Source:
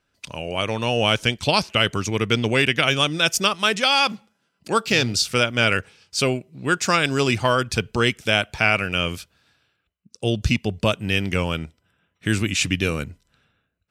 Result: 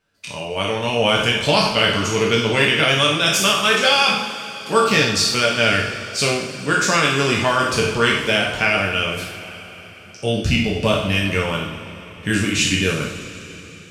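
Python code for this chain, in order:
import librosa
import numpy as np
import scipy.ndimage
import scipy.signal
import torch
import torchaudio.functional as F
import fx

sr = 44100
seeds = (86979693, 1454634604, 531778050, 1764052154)

y = fx.spec_trails(x, sr, decay_s=0.65)
y = fx.rev_double_slope(y, sr, seeds[0], early_s=0.33, late_s=4.4, knee_db=-18, drr_db=-0.5)
y = F.gain(torch.from_numpy(y), -2.0).numpy()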